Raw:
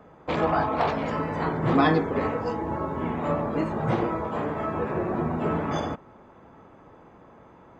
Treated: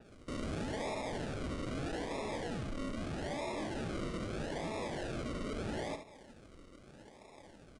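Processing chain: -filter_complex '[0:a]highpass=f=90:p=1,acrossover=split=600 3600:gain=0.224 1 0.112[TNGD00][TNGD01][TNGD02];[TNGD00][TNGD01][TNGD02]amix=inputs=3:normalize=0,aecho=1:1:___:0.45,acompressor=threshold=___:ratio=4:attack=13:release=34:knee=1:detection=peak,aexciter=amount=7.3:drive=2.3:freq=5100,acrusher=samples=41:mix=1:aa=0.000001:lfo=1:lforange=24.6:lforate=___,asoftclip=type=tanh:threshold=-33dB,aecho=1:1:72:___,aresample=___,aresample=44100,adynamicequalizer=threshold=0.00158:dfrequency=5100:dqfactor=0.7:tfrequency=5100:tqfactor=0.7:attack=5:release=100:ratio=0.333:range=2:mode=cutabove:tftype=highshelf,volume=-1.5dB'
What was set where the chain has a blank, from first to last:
3.5, -34dB, 0.79, 0.355, 22050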